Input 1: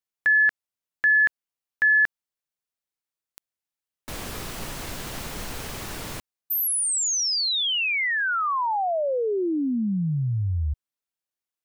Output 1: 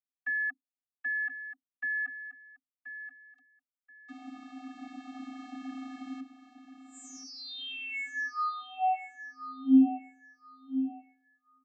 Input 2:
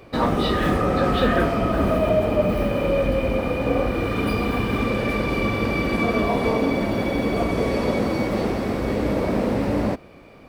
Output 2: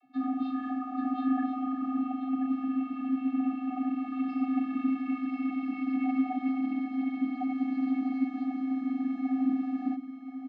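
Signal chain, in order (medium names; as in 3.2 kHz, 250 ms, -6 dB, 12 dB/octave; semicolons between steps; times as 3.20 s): vocoder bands 32, square 242 Hz; gain riding within 4 dB 2 s; tone controls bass -1 dB, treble -10 dB; frequency shift +22 Hz; on a send: feedback delay 1030 ms, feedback 24%, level -11 dB; on the sum: trim -8.5 dB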